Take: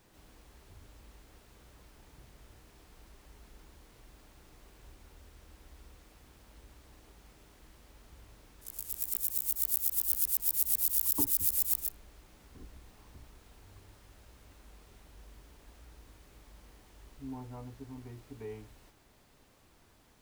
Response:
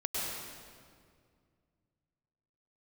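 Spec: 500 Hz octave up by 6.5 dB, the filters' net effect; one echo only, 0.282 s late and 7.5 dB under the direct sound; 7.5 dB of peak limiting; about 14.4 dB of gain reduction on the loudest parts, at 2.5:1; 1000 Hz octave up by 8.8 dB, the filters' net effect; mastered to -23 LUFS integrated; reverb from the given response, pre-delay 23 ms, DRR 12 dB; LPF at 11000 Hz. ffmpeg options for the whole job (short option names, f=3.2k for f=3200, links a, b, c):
-filter_complex "[0:a]lowpass=11k,equalizer=f=500:t=o:g=6.5,equalizer=f=1k:t=o:g=8.5,acompressor=threshold=-49dB:ratio=2.5,alimiter=level_in=13dB:limit=-24dB:level=0:latency=1,volume=-13dB,aecho=1:1:282:0.422,asplit=2[a][b];[1:a]atrim=start_sample=2205,adelay=23[c];[b][c]afir=irnorm=-1:irlink=0,volume=-17.5dB[d];[a][d]amix=inputs=2:normalize=0,volume=29.5dB"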